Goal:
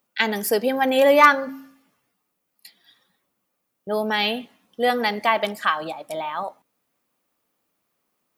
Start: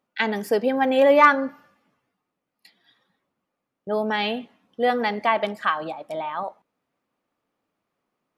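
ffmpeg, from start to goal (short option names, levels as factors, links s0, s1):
-af "aemphasis=mode=production:type=75kf,bandreject=f=134.7:t=h:w=4,bandreject=f=269.4:t=h:w=4"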